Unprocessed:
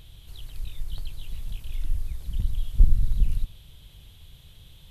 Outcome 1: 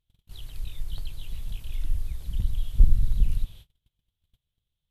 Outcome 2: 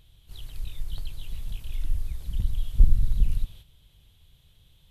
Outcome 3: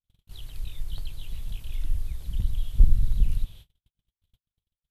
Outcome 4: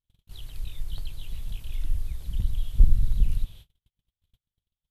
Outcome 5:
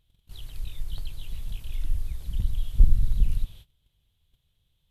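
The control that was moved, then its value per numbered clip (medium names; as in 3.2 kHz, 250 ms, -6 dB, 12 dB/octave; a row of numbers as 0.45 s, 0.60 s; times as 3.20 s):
gate, range: -34 dB, -9 dB, -58 dB, -46 dB, -22 dB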